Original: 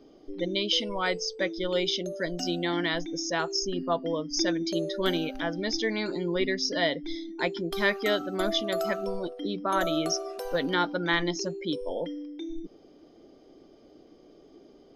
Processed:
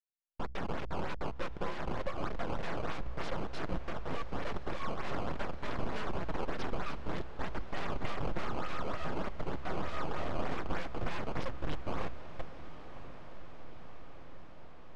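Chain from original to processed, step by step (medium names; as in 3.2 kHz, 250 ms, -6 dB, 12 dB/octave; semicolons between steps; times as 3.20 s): steep high-pass 560 Hz 96 dB/octave; treble shelf 6.7 kHz -10.5 dB; in parallel at +1 dB: compression 4:1, threshold -41 dBFS, peak gain reduction 16 dB; on the sum: Schmitt trigger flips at -36 dBFS; frequency shift -37 Hz; flange 1.3 Hz, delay 4.7 ms, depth 4 ms, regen -6%; decimation with a swept rate 14×, swing 160% 3.3 Hz; full-wave rectifier; tape spacing loss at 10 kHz 27 dB; on a send: echo that smears into a reverb 1089 ms, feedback 70%, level -14.5 dB; on the sum: trim +4.5 dB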